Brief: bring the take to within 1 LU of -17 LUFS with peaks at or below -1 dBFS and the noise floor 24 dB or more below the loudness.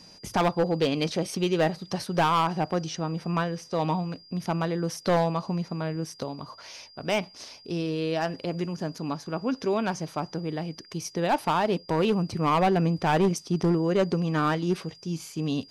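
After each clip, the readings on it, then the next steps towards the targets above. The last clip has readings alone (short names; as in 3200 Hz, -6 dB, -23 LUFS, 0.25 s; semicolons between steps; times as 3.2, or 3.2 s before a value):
clipped 1.0%; flat tops at -17.0 dBFS; steady tone 4800 Hz; tone level -50 dBFS; loudness -27.5 LUFS; peak -17.0 dBFS; loudness target -17.0 LUFS
-> clip repair -17 dBFS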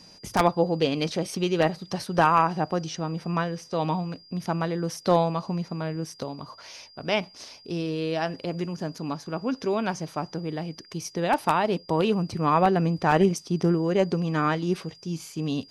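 clipped 0.0%; steady tone 4800 Hz; tone level -50 dBFS
-> notch 4800 Hz, Q 30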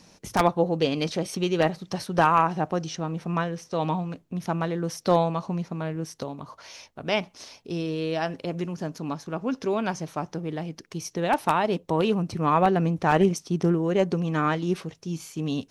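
steady tone none; loudness -26.5 LUFS; peak -8.0 dBFS; loudness target -17.0 LUFS
-> gain +9.5 dB; limiter -1 dBFS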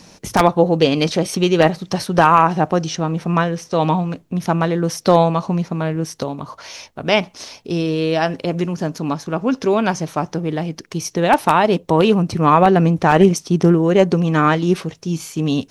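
loudness -17.5 LUFS; peak -1.0 dBFS; noise floor -48 dBFS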